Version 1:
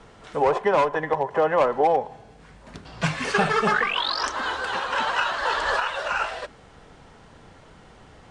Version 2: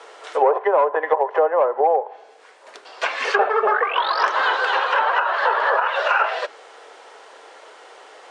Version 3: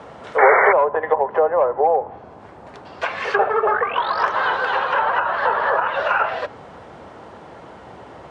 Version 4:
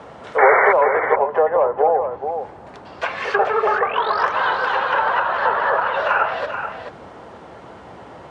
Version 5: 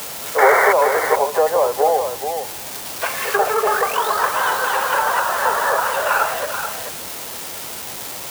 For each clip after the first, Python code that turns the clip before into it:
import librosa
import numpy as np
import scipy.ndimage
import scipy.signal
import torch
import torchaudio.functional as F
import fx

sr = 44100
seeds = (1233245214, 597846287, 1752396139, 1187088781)

y1 = scipy.signal.sosfilt(scipy.signal.butter(6, 400.0, 'highpass', fs=sr, output='sos'), x)
y1 = fx.env_lowpass_down(y1, sr, base_hz=1100.0, full_db=-19.0)
y1 = fx.rider(y1, sr, range_db=4, speed_s=0.5)
y1 = F.gain(torch.from_numpy(y1), 6.5).numpy()
y2 = fx.spec_paint(y1, sr, seeds[0], shape='noise', start_s=0.38, length_s=0.35, low_hz=380.0, high_hz=2300.0, level_db=-14.0)
y2 = fx.high_shelf(y2, sr, hz=3200.0, db=-11.5)
y2 = fx.dmg_noise_band(y2, sr, seeds[1], low_hz=63.0, high_hz=990.0, level_db=-43.0)
y2 = F.gain(torch.from_numpy(y2), 1.0).numpy()
y3 = y2 + 10.0 ** (-8.0 / 20.0) * np.pad(y2, (int(433 * sr / 1000.0), 0))[:len(y2)]
y4 = y3 + 0.5 * 10.0 ** (-17.0 / 20.0) * np.diff(np.sign(y3), prepend=np.sign(y3[:1]))